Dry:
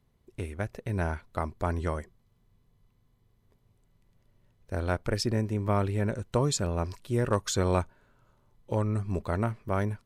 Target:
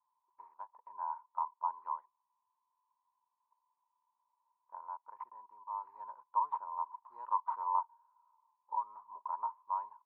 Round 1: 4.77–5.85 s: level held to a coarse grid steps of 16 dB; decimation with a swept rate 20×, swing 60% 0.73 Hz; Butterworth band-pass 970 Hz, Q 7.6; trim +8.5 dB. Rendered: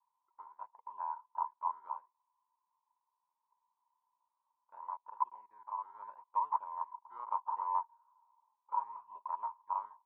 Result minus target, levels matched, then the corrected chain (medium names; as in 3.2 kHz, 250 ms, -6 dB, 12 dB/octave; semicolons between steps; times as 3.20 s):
decimation with a swept rate: distortion +6 dB
4.77–5.85 s: level held to a coarse grid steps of 16 dB; decimation with a swept rate 8×, swing 60% 0.73 Hz; Butterworth band-pass 970 Hz, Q 7.6; trim +8.5 dB